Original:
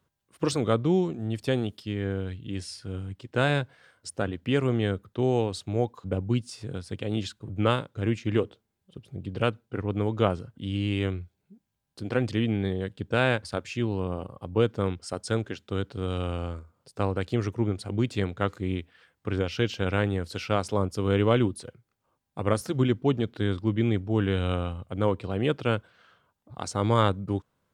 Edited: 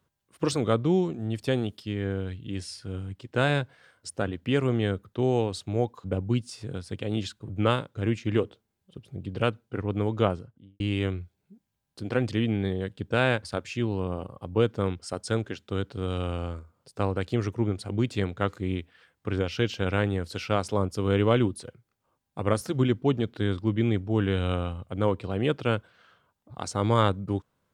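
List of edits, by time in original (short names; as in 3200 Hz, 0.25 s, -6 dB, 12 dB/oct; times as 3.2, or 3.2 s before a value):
10.19–10.8 studio fade out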